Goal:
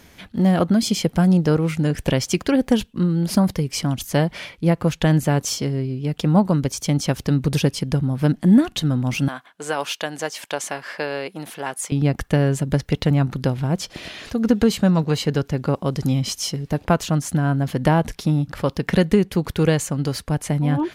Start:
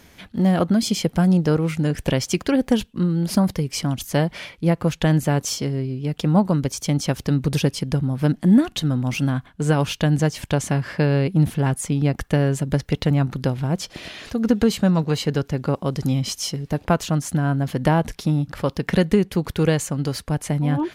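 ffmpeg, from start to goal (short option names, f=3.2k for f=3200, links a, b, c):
-filter_complex "[0:a]asettb=1/sr,asplit=3[a][b][c];[a]atrim=end=9.284[d];[b]atrim=start=9.28:end=11.92,asetpts=PTS-STARTPTS,afade=t=in:d=0.004:c=qsin,afade=t=out:st=2.636:d=0.004:c=qsin,highpass=560[e];[c]atrim=start=11.916[f];[d][e]acrossfade=d=0.004:c1=hsin:c2=qsin[g];[g][f]acrossfade=d=0.004:c1=qsin:c2=hsin,volume=1dB"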